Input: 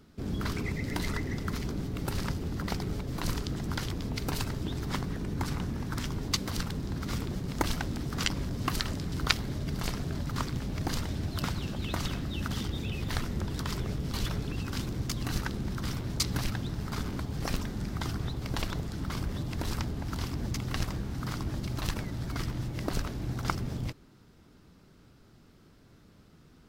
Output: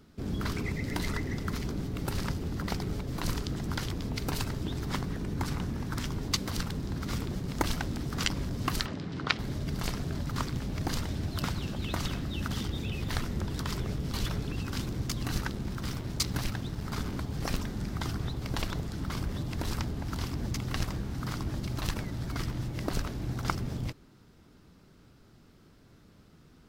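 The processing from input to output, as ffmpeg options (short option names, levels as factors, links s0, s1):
-filter_complex "[0:a]asplit=3[s0][s1][s2];[s0]afade=t=out:st=8.85:d=0.02[s3];[s1]highpass=130,lowpass=3700,afade=t=in:st=8.85:d=0.02,afade=t=out:st=9.38:d=0.02[s4];[s2]afade=t=in:st=9.38:d=0.02[s5];[s3][s4][s5]amix=inputs=3:normalize=0,asettb=1/sr,asplit=3[s6][s7][s8];[s6]atrim=end=15.514[s9];[s7]atrim=start=15.51:end=16.85,asetpts=PTS-STARTPTS,afade=t=in:d=0.004:c=qsin,afade=t=out:st=1.336:d=0.004:c=qsin,aeval=exprs='sgn(val(0))*max(abs(val(0))-0.00422,0)':c=same[s10];[s8]atrim=start=16.846[s11];[s9][s10]acrossfade=d=0.004:c1=hsin:c2=qsin[s12];[s12][s11]acrossfade=d=0.004:c1=qsin:c2=hsin"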